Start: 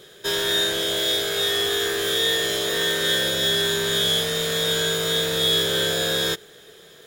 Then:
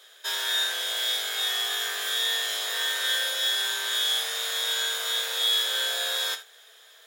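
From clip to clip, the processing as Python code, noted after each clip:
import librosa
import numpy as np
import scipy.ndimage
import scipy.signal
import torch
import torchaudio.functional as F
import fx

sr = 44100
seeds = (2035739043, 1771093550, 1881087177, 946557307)

y = scipy.signal.sosfilt(scipy.signal.butter(4, 690.0, 'highpass', fs=sr, output='sos'), x)
y = fx.rev_gated(y, sr, seeds[0], gate_ms=100, shape='flat', drr_db=9.5)
y = y * 10.0 ** (-3.5 / 20.0)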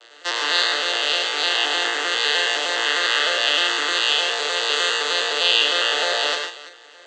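y = fx.vocoder_arp(x, sr, chord='major triad', root=46, every_ms=102)
y = fx.echo_multitap(y, sr, ms=(103, 142, 337), db=(-6.0, -8.5, -17.0))
y = y * 10.0 ** (6.0 / 20.0)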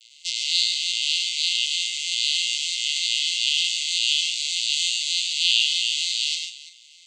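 y = scipy.signal.sosfilt(scipy.signal.cheby1(10, 1.0, 2100.0, 'highpass', fs=sr, output='sos'), x)
y = np.diff(y, prepend=0.0)
y = y * 10.0 ** (5.5 / 20.0)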